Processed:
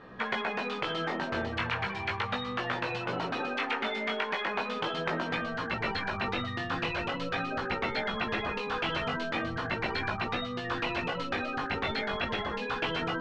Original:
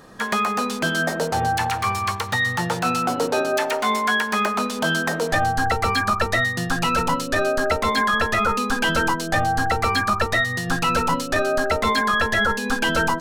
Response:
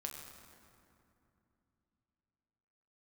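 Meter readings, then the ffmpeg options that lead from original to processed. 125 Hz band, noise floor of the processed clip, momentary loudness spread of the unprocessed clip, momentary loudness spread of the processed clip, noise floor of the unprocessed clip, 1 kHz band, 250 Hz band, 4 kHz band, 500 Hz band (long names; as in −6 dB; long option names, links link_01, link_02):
−11.0 dB, −37 dBFS, 3 LU, 2 LU, −29 dBFS, −12.5 dB, −10.0 dB, −8.5 dB, −10.5 dB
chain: -af "flanger=delay=16:depth=5.2:speed=0.38,lowpass=frequency=2800:width=0.5412,lowpass=frequency=2800:width=1.3066,aemphasis=mode=production:type=75fm,afftfilt=real='re*lt(hypot(re,im),0.178)':imag='im*lt(hypot(re,im),0.178)':win_size=1024:overlap=0.75"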